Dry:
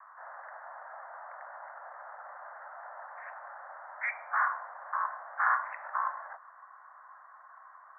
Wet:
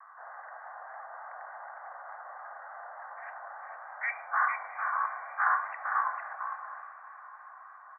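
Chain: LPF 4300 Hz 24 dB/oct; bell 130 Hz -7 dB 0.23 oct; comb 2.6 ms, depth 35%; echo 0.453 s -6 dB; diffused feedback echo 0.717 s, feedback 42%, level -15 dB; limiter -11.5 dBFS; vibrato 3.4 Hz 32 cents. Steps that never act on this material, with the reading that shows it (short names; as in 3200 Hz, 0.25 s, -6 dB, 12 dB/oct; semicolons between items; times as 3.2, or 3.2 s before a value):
LPF 4300 Hz: input band ends at 2400 Hz; bell 130 Hz: input band starts at 510 Hz; limiter -11.5 dBFS: input peak -14.0 dBFS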